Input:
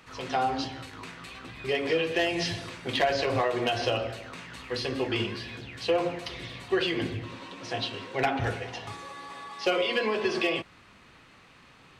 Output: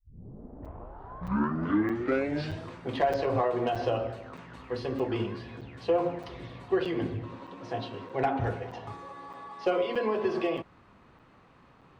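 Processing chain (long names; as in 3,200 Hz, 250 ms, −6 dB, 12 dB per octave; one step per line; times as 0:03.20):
turntable start at the beginning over 2.75 s
drawn EQ curve 1,000 Hz 0 dB, 2,300 Hz −11 dB, 10,000 Hz −16 dB
regular buffer underruns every 0.62 s, samples 256, zero, from 0:00.65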